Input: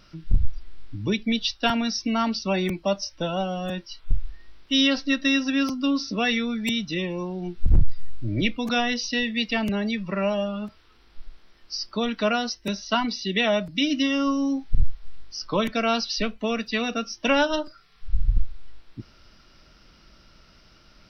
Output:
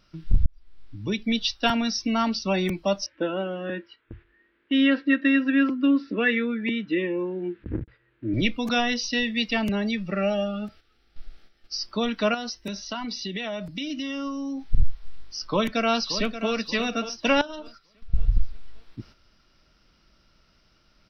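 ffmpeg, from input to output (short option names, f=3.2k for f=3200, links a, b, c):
-filter_complex "[0:a]asettb=1/sr,asplit=3[a][b][c];[a]atrim=end=3.064[d];[b]atrim=start=3.06:end=8.34,asetpts=PTS-STARTPTS,afade=t=in:d=0.004:c=qsin,afade=t=out:st=5.276:d=0.004:c=qsin,highpass=150,equalizer=f=160:t=q:w=4:g=-9,equalizer=f=320:t=q:w=4:g=9,equalizer=f=460:t=q:w=4:g=4,equalizer=f=740:t=q:w=4:g=-10,equalizer=f=1.1k:t=q:w=4:g=-4,equalizer=f=1.7k:t=q:w=4:g=8,lowpass=f=2.7k:w=0.5412,lowpass=f=2.7k:w=1.3066[e];[c]atrim=start=8.336[f];[d][e]acrossfade=d=0.004:c1=hsin:c2=qsin[g];[g][f]acrossfade=d=0.004:c1=qsin:c2=hsin,asettb=1/sr,asplit=3[h][i][j];[h]atrim=end=10.034[k];[i]atrim=start=10.03:end=11.76,asetpts=PTS-STARTPTS,afade=t=in:d=0.004:c=qsin,afade=t=out:st=1.726:d=0.004:c=qsin,asuperstop=centerf=1000:order=8:qfactor=3.9[l];[j]atrim=start=11.756[m];[k][l]acrossfade=d=0.004:c1=hsin:c2=qsin[n];[n][m]acrossfade=d=0.004:c1=qsin:c2=hsin,asettb=1/sr,asplit=3[o][p][q];[o]atrim=end=12.344[r];[p]atrim=start=12.34:end=14.63,asetpts=PTS-STARTPTS,afade=t=in:d=0.004:c=qsin,afade=t=out:st=2.286:d=0.004:c=qsin,acompressor=threshold=-28dB:ratio=6:attack=3.2:release=140:knee=1:detection=peak[s];[q]atrim=start=14.626[t];[r][s]acrossfade=d=0.004:c1=hsin:c2=qsin[u];[u][t]acrossfade=d=0.004:c1=qsin:c2=hsin,asplit=2[v][w];[w]afade=t=in:st=15.37:d=0.01,afade=t=out:st=16.51:d=0.01,aecho=0:1:580|1160|1740|2320:0.281838|0.0986434|0.0345252|0.0120838[x];[v][x]amix=inputs=2:normalize=0,asettb=1/sr,asplit=3[y][z][aa];[y]atrim=end=17.414[ab];[z]atrim=start=17.41:end=18.14,asetpts=PTS-STARTPTS,afade=t=in:d=0.004:c=qsin,afade=t=out:st=0.726:d=0.004:c=qsin,acompressor=threshold=-34dB:ratio=5:attack=3.2:release=140:knee=1:detection=peak[ac];[aa]atrim=start=18.136[ad];[ab][ac]acrossfade=d=0.004:c1=hsin:c2=qsin[ae];[ae][ad]acrossfade=d=0.004:c1=qsin:c2=hsin,asplit=2[af][ag];[af]atrim=end=0.46,asetpts=PTS-STARTPTS,afade=t=out:st=0.456:d=0.004:c=hsin[ah];[ag]atrim=start=0.46,asetpts=PTS-STARTPTS,afade=t=in:d=0.91[ai];[ah][ai]concat=n=2:v=0:a=1,agate=range=-8dB:threshold=-47dB:ratio=16:detection=peak"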